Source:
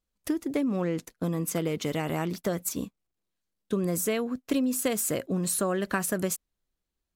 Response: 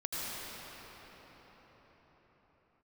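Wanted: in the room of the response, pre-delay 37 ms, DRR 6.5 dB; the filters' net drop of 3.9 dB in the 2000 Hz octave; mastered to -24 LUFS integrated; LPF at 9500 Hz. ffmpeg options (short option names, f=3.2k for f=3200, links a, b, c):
-filter_complex "[0:a]lowpass=9.5k,equalizer=f=2k:t=o:g=-5,asplit=2[a][b];[1:a]atrim=start_sample=2205,adelay=37[c];[b][c]afir=irnorm=-1:irlink=0,volume=-12dB[d];[a][d]amix=inputs=2:normalize=0,volume=5.5dB"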